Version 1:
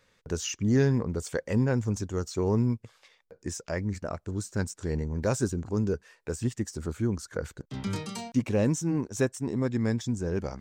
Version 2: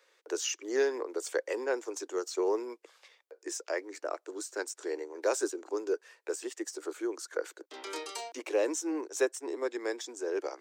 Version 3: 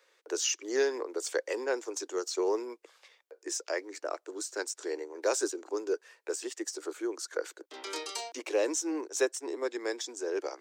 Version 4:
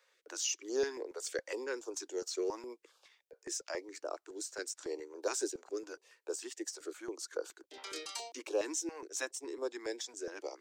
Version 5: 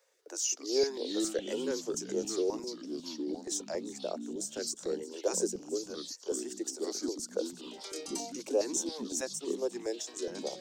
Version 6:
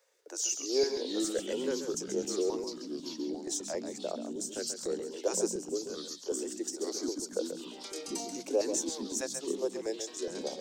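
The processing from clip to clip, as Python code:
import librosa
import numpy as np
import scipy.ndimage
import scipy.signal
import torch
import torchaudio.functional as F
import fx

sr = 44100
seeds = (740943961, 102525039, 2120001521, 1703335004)

y1 = scipy.signal.sosfilt(scipy.signal.butter(12, 320.0, 'highpass', fs=sr, output='sos'), x)
y2 = fx.dynamic_eq(y1, sr, hz=5000.0, q=0.86, threshold_db=-51.0, ratio=4.0, max_db=5)
y3 = fx.filter_held_notch(y2, sr, hz=7.2, low_hz=320.0, high_hz=2000.0)
y3 = y3 * librosa.db_to_amplitude(-4.0)
y4 = fx.band_shelf(y3, sr, hz=2100.0, db=-9.5, octaves=2.4)
y4 = fx.echo_wet_highpass(y4, sr, ms=353, feedback_pct=45, hz=5500.0, wet_db=-16.0)
y4 = fx.echo_pitch(y4, sr, ms=194, semitones=-4, count=3, db_per_echo=-6.0)
y4 = y4 * librosa.db_to_amplitude(4.5)
y5 = y4 + 10.0 ** (-8.5 / 20.0) * np.pad(y4, (int(135 * sr / 1000.0), 0))[:len(y4)]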